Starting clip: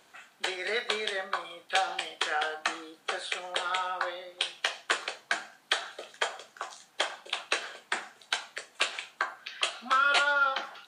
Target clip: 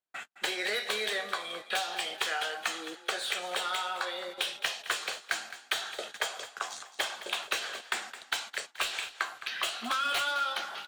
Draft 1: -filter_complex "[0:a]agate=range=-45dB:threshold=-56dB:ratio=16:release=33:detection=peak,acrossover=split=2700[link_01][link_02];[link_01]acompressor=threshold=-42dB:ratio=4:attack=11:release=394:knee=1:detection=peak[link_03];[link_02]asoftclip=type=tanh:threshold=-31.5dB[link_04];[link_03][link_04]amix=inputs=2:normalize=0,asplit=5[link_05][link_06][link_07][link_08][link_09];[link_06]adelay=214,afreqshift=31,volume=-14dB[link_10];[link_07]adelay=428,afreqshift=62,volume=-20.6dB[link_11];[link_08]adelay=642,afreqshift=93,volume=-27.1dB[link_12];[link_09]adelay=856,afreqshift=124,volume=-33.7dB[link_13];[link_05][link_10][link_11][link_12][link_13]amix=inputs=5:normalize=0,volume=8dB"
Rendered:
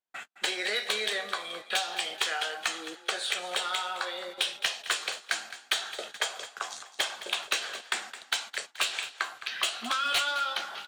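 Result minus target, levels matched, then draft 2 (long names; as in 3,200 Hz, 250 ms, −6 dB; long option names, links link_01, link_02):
soft clipping: distortion −5 dB
-filter_complex "[0:a]agate=range=-45dB:threshold=-56dB:ratio=16:release=33:detection=peak,acrossover=split=2700[link_01][link_02];[link_01]acompressor=threshold=-42dB:ratio=4:attack=11:release=394:knee=1:detection=peak[link_03];[link_02]asoftclip=type=tanh:threshold=-40dB[link_04];[link_03][link_04]amix=inputs=2:normalize=0,asplit=5[link_05][link_06][link_07][link_08][link_09];[link_06]adelay=214,afreqshift=31,volume=-14dB[link_10];[link_07]adelay=428,afreqshift=62,volume=-20.6dB[link_11];[link_08]adelay=642,afreqshift=93,volume=-27.1dB[link_12];[link_09]adelay=856,afreqshift=124,volume=-33.7dB[link_13];[link_05][link_10][link_11][link_12][link_13]amix=inputs=5:normalize=0,volume=8dB"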